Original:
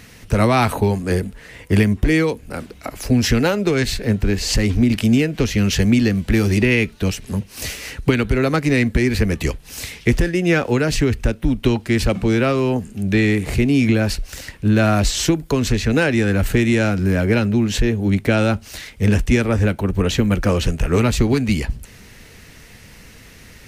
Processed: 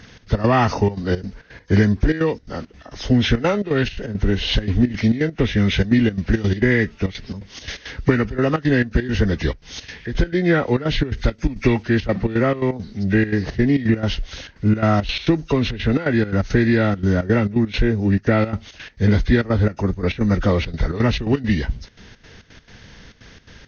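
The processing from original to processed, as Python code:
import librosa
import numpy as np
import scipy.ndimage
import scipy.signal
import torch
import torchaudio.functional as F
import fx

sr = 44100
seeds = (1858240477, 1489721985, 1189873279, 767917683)

y = fx.freq_compress(x, sr, knee_hz=1200.0, ratio=1.5)
y = fx.step_gate(y, sr, bpm=170, pattern='xx.x.xxxxx.xx.', floor_db=-12.0, edge_ms=4.5)
y = fx.high_shelf(y, sr, hz=2300.0, db=8.5, at=(11.17, 11.83))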